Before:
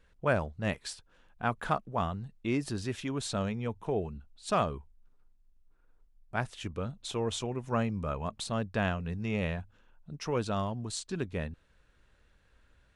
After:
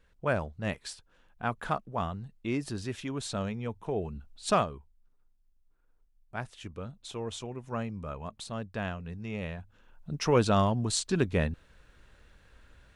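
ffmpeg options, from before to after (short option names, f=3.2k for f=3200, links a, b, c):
-af "volume=18dB,afade=t=in:st=3.95:d=0.53:silence=0.446684,afade=t=out:st=4.48:d=0.19:silence=0.298538,afade=t=in:st=9.58:d=0.56:silence=0.251189"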